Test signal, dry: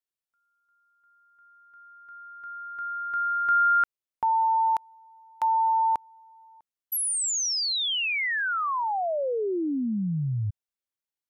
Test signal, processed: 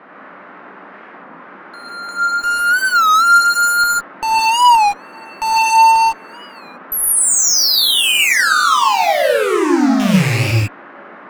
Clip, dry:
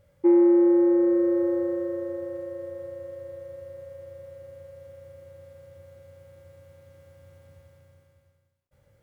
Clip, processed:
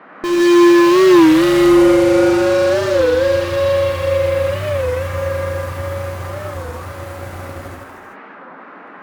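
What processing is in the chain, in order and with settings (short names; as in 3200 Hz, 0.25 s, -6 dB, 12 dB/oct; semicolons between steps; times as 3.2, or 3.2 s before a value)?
rattling part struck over -33 dBFS, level -22 dBFS; in parallel at -1.5 dB: compressor 6:1, threshold -36 dBFS; on the sum: vibrato 0.89 Hz 12 cents; fuzz box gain 37 dB, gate -46 dBFS; band noise 190–1700 Hz -38 dBFS; non-linear reverb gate 0.18 s rising, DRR -3.5 dB; record warp 33 1/3 rpm, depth 160 cents; gain -4.5 dB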